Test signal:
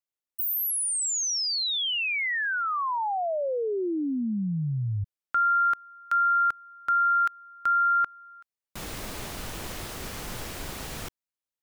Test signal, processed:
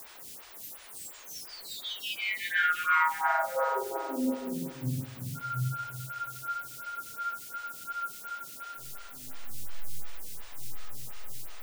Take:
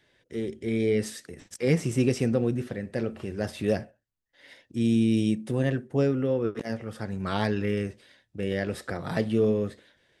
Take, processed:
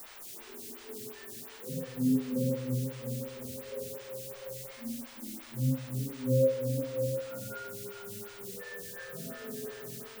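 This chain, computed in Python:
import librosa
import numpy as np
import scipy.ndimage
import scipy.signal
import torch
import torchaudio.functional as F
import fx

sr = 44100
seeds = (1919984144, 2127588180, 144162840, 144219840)

p1 = fx.peak_eq(x, sr, hz=1600.0, db=7.0, octaves=0.83)
p2 = fx.spec_topn(p1, sr, count=2)
p3 = fx.stiff_resonator(p2, sr, f0_hz=130.0, decay_s=0.67, stiffness=0.002)
p4 = fx.dynamic_eq(p3, sr, hz=410.0, q=4.1, threshold_db=-58.0, ratio=4.0, max_db=-3)
p5 = p4 + fx.echo_multitap(p4, sr, ms=(59, 82, 215, 307, 653), db=(-5.5, -8.0, -12.5, -18.0, -4.5), dry=0)
p6 = fx.rev_spring(p5, sr, rt60_s=2.1, pass_ms=(47,), chirp_ms=45, drr_db=-8.0)
p7 = fx.quant_dither(p6, sr, seeds[0], bits=8, dither='triangular')
p8 = fx.stagger_phaser(p7, sr, hz=2.8)
y = F.gain(torch.from_numpy(p8), 4.0).numpy()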